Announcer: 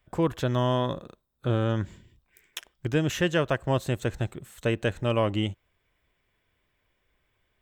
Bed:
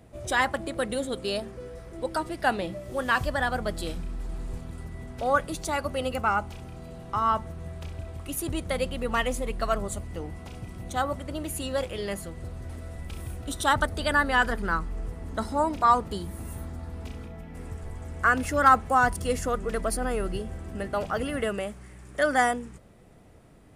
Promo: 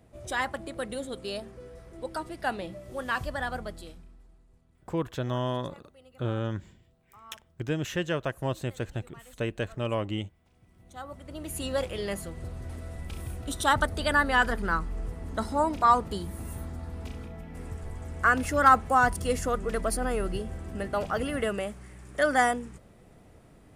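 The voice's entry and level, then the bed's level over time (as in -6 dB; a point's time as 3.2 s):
4.75 s, -5.0 dB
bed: 3.57 s -5.5 dB
4.46 s -26.5 dB
10.43 s -26.5 dB
11.64 s -0.5 dB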